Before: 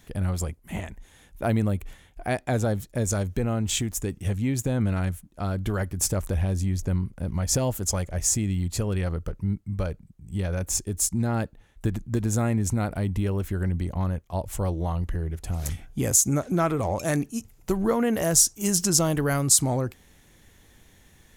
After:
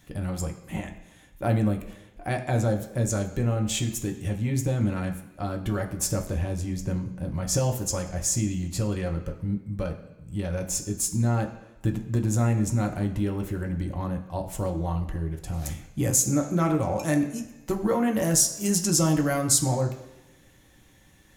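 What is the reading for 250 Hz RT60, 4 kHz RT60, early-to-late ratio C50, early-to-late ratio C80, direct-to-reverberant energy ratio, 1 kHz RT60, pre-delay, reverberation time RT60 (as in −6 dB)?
1.0 s, 1.1 s, 10.0 dB, 12.5 dB, 2.0 dB, 1.0 s, 3 ms, 1.1 s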